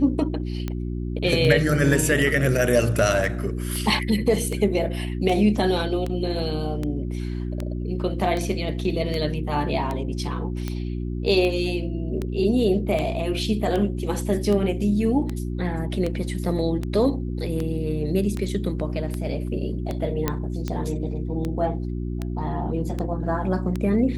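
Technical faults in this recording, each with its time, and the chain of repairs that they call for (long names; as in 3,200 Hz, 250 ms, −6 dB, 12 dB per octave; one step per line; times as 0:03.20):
mains hum 60 Hz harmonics 6 −28 dBFS
scratch tick 78 rpm −15 dBFS
0:20.28: click −8 dBFS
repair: click removal
hum removal 60 Hz, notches 6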